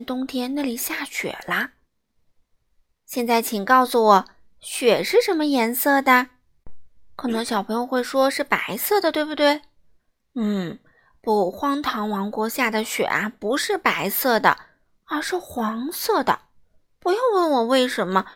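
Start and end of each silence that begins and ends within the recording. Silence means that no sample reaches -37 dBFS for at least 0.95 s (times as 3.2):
1.67–3.09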